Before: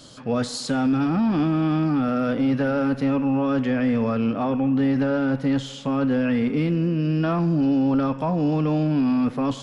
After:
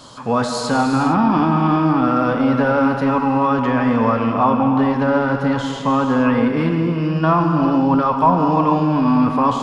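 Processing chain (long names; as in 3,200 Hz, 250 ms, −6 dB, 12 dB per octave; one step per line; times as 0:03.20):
parametric band 1,000 Hz +14.5 dB 0.74 octaves
reverb whose tail is shaped and stops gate 480 ms flat, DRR 4 dB
level +2.5 dB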